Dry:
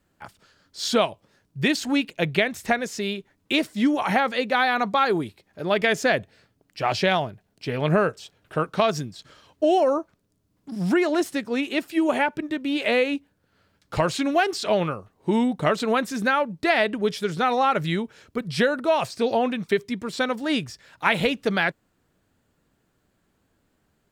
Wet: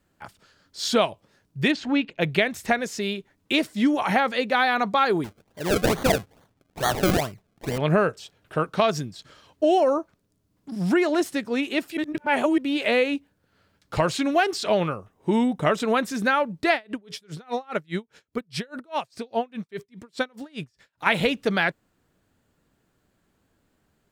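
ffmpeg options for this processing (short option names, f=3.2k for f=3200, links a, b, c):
-filter_complex "[0:a]asplit=3[a][b][c];[a]afade=t=out:st=1.71:d=0.02[d];[b]lowpass=3.3k,afade=t=in:st=1.71:d=0.02,afade=t=out:st=2.2:d=0.02[e];[c]afade=t=in:st=2.2:d=0.02[f];[d][e][f]amix=inputs=3:normalize=0,asettb=1/sr,asplit=3[g][h][i];[g]atrim=end=5.244[j];[h]atrim=start=5.24:end=7.78,asetpts=PTS-STARTPTS,afade=t=in:d=0.004:c=qsin,afade=t=out:st=2.536:d=0.004:c=qsin,acrusher=samples=33:mix=1:aa=0.000001:lfo=1:lforange=33:lforate=2.3[k];[i]atrim=start=7.776[l];[j][k]acrossfade=d=0.004:c1=hsin:c2=qsin[m];[m][l]acrossfade=d=0.004:c1=qsin:c2=hsin,asettb=1/sr,asplit=3[n][o][p];[n]atrim=end=14.974[q];[o]atrim=start=14.97:end=15.83,asetpts=PTS-STARTPTS,afade=t=in:d=0.004:c=qsin,afade=t=out:st=0.856:d=0.004:c=qsin,bandreject=f=4.3k:w=5.5[r];[p]atrim=start=15.826[s];[q][r]acrossfade=d=0.004:c1=hsin:c2=qsin[t];[t][s]acrossfade=d=0.004:c1=qsin:c2=hsin,asplit=3[u][v][w];[u]afade=t=out:st=16.73:d=0.02[x];[v]aeval=exprs='val(0)*pow(10,-34*(0.5-0.5*cos(2*PI*4.9*n/s))/20)':c=same,afade=t=in:st=16.73:d=0.02,afade=t=out:st=21.05:d=0.02[y];[w]afade=t=in:st=21.05:d=0.02[z];[x][y][z]amix=inputs=3:normalize=0,asplit=3[aa][ab][ac];[aa]atrim=end=11.972[ad];[ab]atrim=start=11.968:end=12.582,asetpts=PTS-STARTPTS,areverse[ae];[ac]atrim=start=12.578[af];[ad][ae]acrossfade=d=0.004:c1=hsin:c2=hsin[ag];[ag][af]acrossfade=d=0.004:c1=hsin:c2=hsin"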